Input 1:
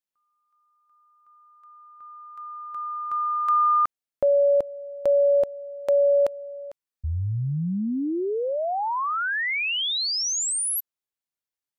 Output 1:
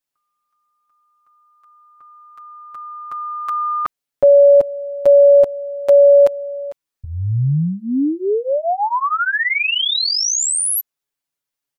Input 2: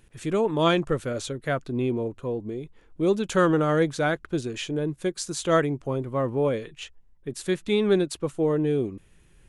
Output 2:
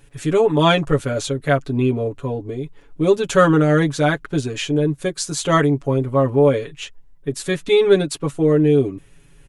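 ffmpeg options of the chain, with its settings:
-af "aecho=1:1:7.1:0.96,volume=1.68"

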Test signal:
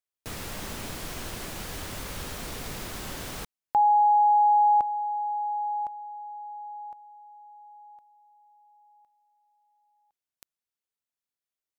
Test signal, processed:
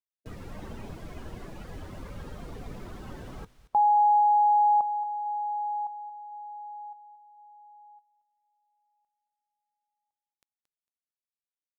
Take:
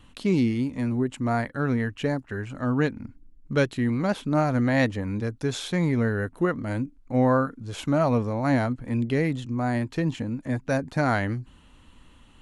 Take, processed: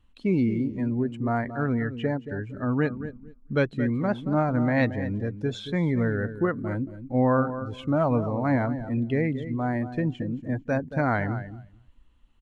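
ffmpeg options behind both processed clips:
-af "highshelf=f=8400:g=-9,aecho=1:1:226|452|678:0.282|0.0733|0.0191,afftdn=nr=15:nf=-36,volume=0.891"

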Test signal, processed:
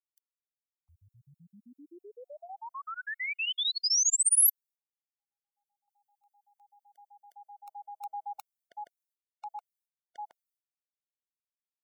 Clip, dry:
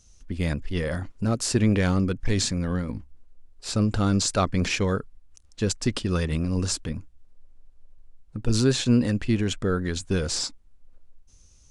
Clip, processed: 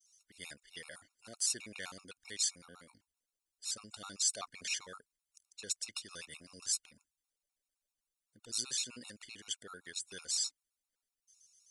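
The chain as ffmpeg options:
-af "agate=range=0.0224:threshold=0.002:ratio=3:detection=peak,aderivative,afftfilt=real='re*gt(sin(2*PI*7.8*pts/sr)*(1-2*mod(floor(b*sr/1024/720),2)),0)':imag='im*gt(sin(2*PI*7.8*pts/sr)*(1-2*mod(floor(b*sr/1024/720),2)),0)':win_size=1024:overlap=0.75"

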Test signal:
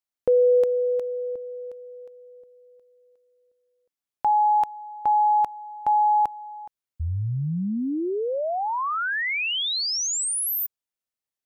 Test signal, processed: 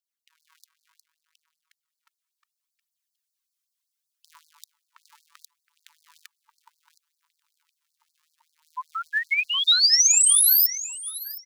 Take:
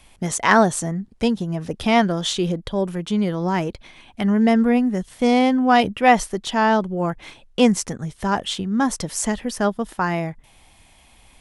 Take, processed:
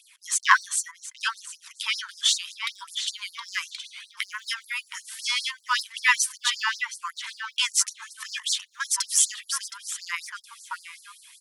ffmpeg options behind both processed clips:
-filter_complex "[0:a]asplit=2[s0][s1];[s1]adelay=718,lowpass=f=4000:p=1,volume=0.376,asplit=2[s2][s3];[s3]adelay=718,lowpass=f=4000:p=1,volume=0.3,asplit=2[s4][s5];[s5]adelay=718,lowpass=f=4000:p=1,volume=0.3,asplit=2[s6][s7];[s7]adelay=718,lowpass=f=4000:p=1,volume=0.3[s8];[s0][s2][s4][s6][s8]amix=inputs=5:normalize=0,aphaser=in_gain=1:out_gain=1:delay=2.6:decay=0.43:speed=0.69:type=triangular,acrossover=split=650|3000[s9][s10][s11];[s11]dynaudnorm=f=450:g=11:m=2.51[s12];[s9][s10][s12]amix=inputs=3:normalize=0,afftfilt=real='re*gte(b*sr/1024,890*pow(4200/890,0.5+0.5*sin(2*PI*5.2*pts/sr)))':imag='im*gte(b*sr/1024,890*pow(4200/890,0.5+0.5*sin(2*PI*5.2*pts/sr)))':win_size=1024:overlap=0.75"

